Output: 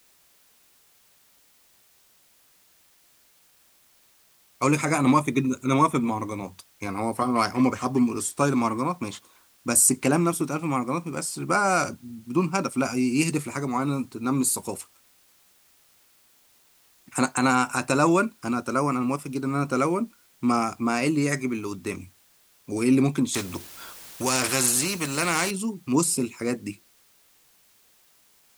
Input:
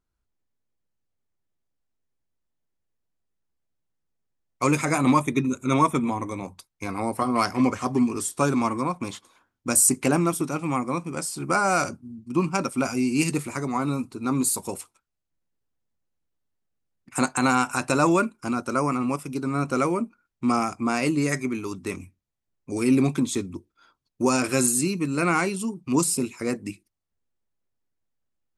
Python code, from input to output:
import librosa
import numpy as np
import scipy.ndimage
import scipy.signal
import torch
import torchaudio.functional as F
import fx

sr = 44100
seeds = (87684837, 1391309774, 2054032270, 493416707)

y = scipy.signal.sosfilt(scipy.signal.butter(2, 40.0, 'highpass', fs=sr, output='sos'), x)
y = fx.quant_dither(y, sr, seeds[0], bits=10, dither='triangular')
y = fx.spectral_comp(y, sr, ratio=2.0, at=(23.34, 25.51))